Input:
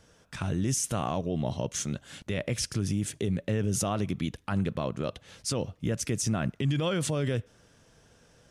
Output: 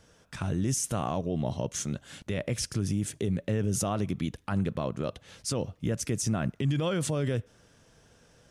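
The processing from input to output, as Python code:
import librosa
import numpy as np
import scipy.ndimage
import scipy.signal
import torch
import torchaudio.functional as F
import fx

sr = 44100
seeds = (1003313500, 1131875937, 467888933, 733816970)

y = fx.dynamic_eq(x, sr, hz=3000.0, q=0.74, threshold_db=-46.0, ratio=4.0, max_db=-3)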